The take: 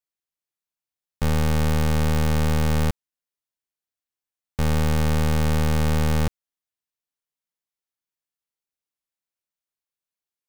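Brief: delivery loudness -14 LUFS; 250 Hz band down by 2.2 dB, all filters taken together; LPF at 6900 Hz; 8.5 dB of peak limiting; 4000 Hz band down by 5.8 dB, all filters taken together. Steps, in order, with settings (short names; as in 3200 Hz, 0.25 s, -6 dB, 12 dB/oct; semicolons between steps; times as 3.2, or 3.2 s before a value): LPF 6900 Hz; bell 250 Hz -3.5 dB; bell 4000 Hz -7.5 dB; gain +18.5 dB; limiter -9 dBFS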